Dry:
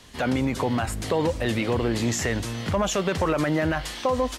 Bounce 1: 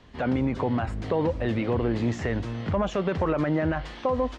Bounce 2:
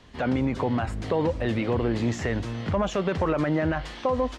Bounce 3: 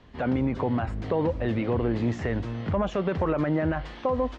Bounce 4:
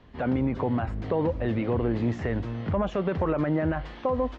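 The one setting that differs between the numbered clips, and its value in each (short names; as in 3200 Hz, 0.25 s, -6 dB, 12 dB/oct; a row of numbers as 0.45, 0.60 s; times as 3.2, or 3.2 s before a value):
tape spacing loss, at 10 kHz: 29, 20, 38, 46 dB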